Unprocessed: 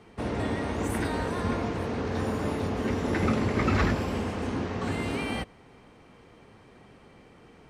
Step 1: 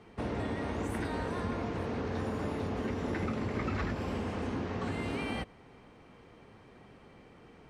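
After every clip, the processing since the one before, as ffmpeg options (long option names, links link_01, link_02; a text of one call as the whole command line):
ffmpeg -i in.wav -af "highshelf=frequency=7000:gain=-7.5,acompressor=threshold=-29dB:ratio=4,volume=-2dB" out.wav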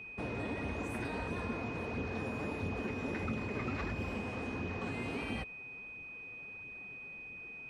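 ffmpeg -i in.wav -af "flanger=delay=0.3:depth=7.9:regen=45:speed=1.5:shape=sinusoidal,aeval=exprs='val(0)+0.00562*sin(2*PI*2500*n/s)':channel_layout=same" out.wav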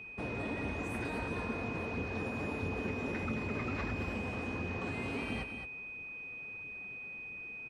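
ffmpeg -i in.wav -af "aecho=1:1:218:0.376" out.wav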